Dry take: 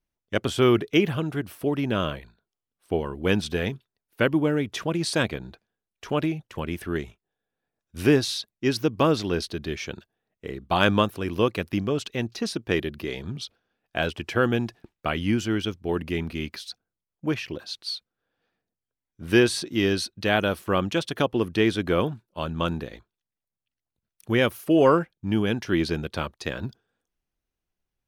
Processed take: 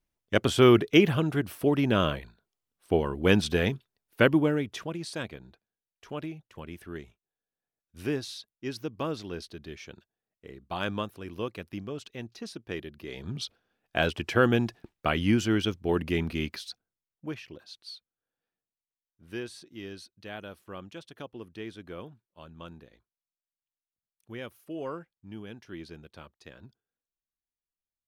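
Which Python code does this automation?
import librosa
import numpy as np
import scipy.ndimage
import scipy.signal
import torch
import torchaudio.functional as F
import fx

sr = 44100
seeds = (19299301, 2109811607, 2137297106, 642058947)

y = fx.gain(x, sr, db=fx.line((4.28, 1.0), (5.09, -11.5), (12.99, -11.5), (13.4, 0.0), (16.44, 0.0), (17.44, -12.0), (17.95, -12.0), (19.24, -18.5)))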